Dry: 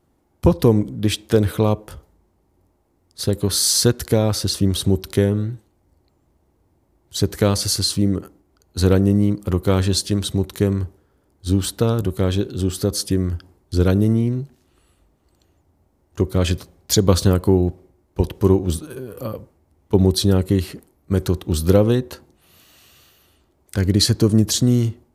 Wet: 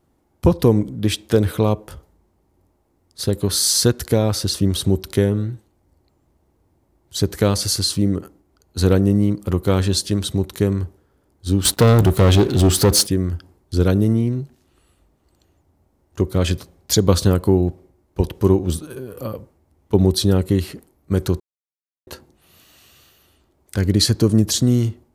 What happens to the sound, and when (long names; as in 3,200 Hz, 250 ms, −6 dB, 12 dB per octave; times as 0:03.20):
0:11.65–0:13.07: leveller curve on the samples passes 3
0:21.40–0:22.07: silence